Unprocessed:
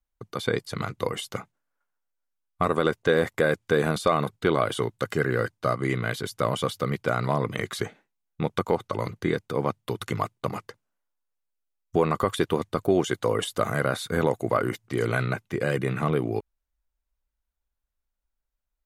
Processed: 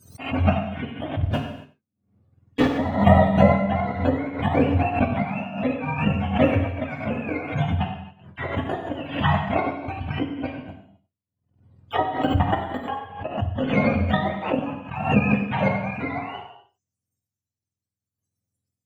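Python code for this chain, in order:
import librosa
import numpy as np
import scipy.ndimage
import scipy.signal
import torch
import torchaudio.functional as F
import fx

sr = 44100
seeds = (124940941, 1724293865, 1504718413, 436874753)

y = fx.octave_mirror(x, sr, pivot_hz=560.0)
y = fx.high_shelf(y, sr, hz=7400.0, db=-6.0)
y = fx.leveller(y, sr, passes=3, at=(1.23, 2.68))
y = fx.transient(y, sr, attack_db=8, sustain_db=-3)
y = fx.level_steps(y, sr, step_db=22, at=(12.02, 13.38))
y = fx.chopper(y, sr, hz=0.66, depth_pct=60, duty_pct=35)
y = y + 10.0 ** (-15.5 / 20.0) * np.pad(y, (int(94 * sr / 1000.0), 0))[:len(y)]
y = fx.rev_gated(y, sr, seeds[0], gate_ms=300, shape='falling', drr_db=2.0)
y = fx.pre_swell(y, sr, db_per_s=100.0)
y = y * 10.0 ** (2.5 / 20.0)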